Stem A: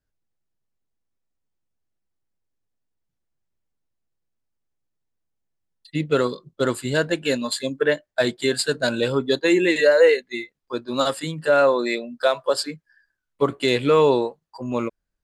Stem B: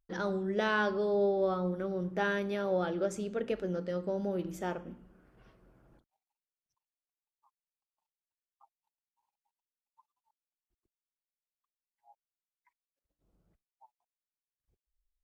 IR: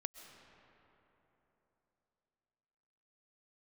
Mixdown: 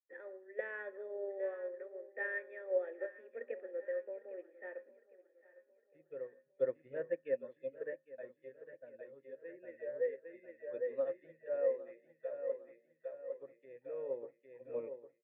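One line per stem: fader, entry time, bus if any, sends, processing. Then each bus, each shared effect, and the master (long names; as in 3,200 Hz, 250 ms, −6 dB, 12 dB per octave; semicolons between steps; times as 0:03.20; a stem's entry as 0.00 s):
−6.0 dB, 0.00 s, no send, echo send −11.5 dB, treble cut that deepens with the level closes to 2,000 Hz, closed at −19 dBFS; automatic ducking −10 dB, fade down 1.20 s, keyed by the second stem
+2.5 dB, 0.00 s, no send, echo send −13.5 dB, Chebyshev high-pass filter 230 Hz, order 8; parametric band 1,800 Hz +9.5 dB 0.77 octaves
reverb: not used
echo: repeating echo 806 ms, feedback 59%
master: formant resonators in series e; mains-hum notches 50/100/150/200/250 Hz; expander for the loud parts 1.5 to 1, over −59 dBFS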